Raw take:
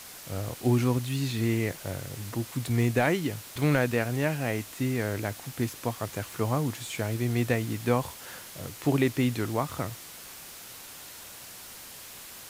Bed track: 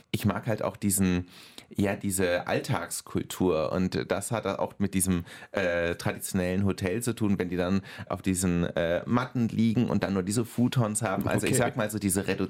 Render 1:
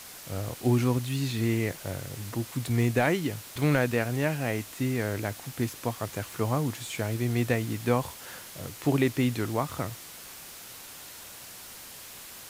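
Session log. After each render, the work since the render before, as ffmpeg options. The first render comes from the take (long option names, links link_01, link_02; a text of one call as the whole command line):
ffmpeg -i in.wav -af anull out.wav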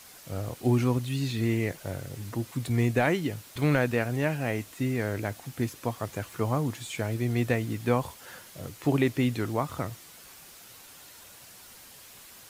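ffmpeg -i in.wav -af "afftdn=noise_reduction=6:noise_floor=-45" out.wav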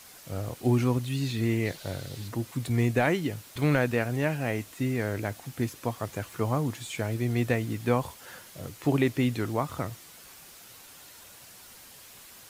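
ffmpeg -i in.wav -filter_complex "[0:a]asettb=1/sr,asplit=3[link_01][link_02][link_03];[link_01]atrim=end=1.654[link_04];[link_02]atrim=start=1.65:end=2.28,asetpts=PTS-STARTPTS,afade=type=in:duration=0.004:curve=qsin,afade=type=out:start_time=0.626:duration=0.004:curve=qsin,equalizer=frequency=4000:width=2:gain=10.5[link_05];[link_03]atrim=start=2.276[link_06];[link_04][link_05]acrossfade=duration=0.004:curve1=hsin:curve2=qsin[link_07];[link_07][link_06]acrossfade=duration=0.004:curve1=qsin:curve2=hsin" out.wav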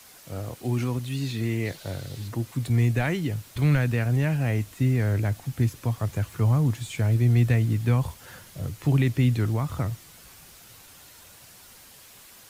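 ffmpeg -i in.wav -filter_complex "[0:a]acrossover=split=150|1400[link_01][link_02][link_03];[link_01]dynaudnorm=framelen=860:gausssize=7:maxgain=12.5dB[link_04];[link_02]alimiter=limit=-23.5dB:level=0:latency=1[link_05];[link_04][link_05][link_03]amix=inputs=3:normalize=0" out.wav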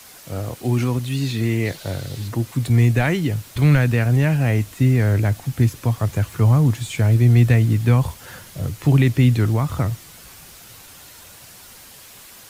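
ffmpeg -i in.wav -af "volume=6.5dB" out.wav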